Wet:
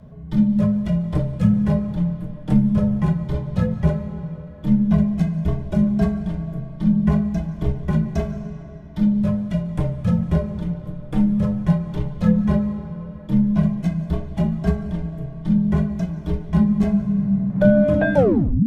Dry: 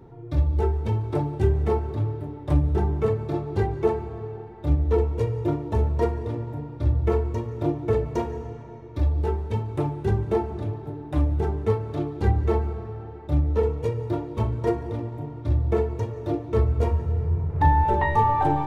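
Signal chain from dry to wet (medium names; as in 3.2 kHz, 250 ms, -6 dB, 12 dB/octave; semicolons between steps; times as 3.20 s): tape stop on the ending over 0.51 s; frequency shift -280 Hz; trim +4 dB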